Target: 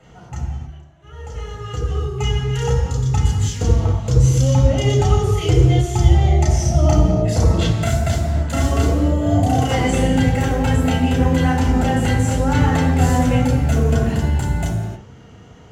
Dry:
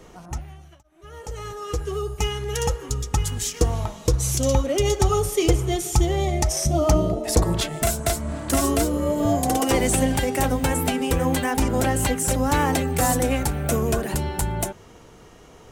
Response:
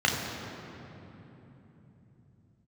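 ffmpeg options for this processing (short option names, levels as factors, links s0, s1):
-filter_complex "[0:a]lowshelf=f=99:g=11.5[s0];[1:a]atrim=start_sample=2205,afade=t=out:st=0.37:d=0.01,atrim=end_sample=16758[s1];[s0][s1]afir=irnorm=-1:irlink=0,volume=0.237"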